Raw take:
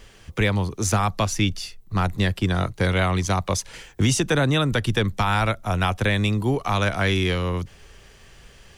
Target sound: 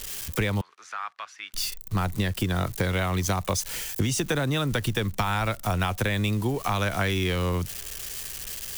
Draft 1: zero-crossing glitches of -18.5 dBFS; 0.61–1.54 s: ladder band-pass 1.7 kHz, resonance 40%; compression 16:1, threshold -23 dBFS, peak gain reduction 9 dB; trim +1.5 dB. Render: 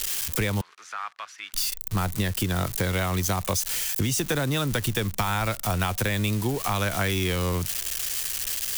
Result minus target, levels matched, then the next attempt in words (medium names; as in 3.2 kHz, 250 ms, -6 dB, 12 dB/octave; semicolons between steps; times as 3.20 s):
zero-crossing glitches: distortion +9 dB
zero-crossing glitches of -27.5 dBFS; 0.61–1.54 s: ladder band-pass 1.7 kHz, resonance 40%; compression 16:1, threshold -23 dBFS, peak gain reduction 9 dB; trim +1.5 dB